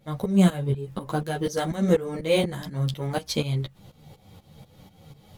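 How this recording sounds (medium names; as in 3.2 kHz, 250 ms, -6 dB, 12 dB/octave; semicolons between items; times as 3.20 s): tremolo saw up 4.1 Hz, depth 85%; a shimmering, thickened sound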